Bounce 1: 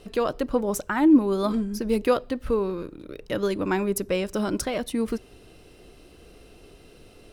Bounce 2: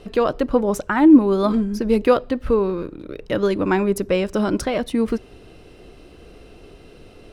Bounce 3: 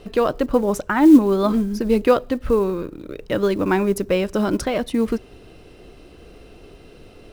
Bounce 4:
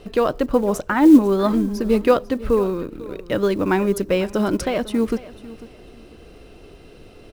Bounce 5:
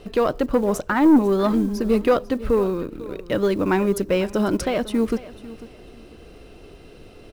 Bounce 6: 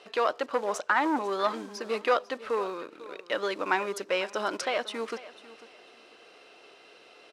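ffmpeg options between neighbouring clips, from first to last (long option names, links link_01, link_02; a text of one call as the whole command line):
ffmpeg -i in.wav -af "lowpass=frequency=3400:poles=1,volume=6dB" out.wav
ffmpeg -i in.wav -af "acrusher=bits=8:mode=log:mix=0:aa=0.000001" out.wav
ffmpeg -i in.wav -af "aecho=1:1:497|994:0.126|0.0315" out.wav
ffmpeg -i in.wav -af "aeval=exprs='(tanh(2.82*val(0)+0.15)-tanh(0.15))/2.82':channel_layout=same" out.wav
ffmpeg -i in.wav -af "highpass=770,lowpass=6400" out.wav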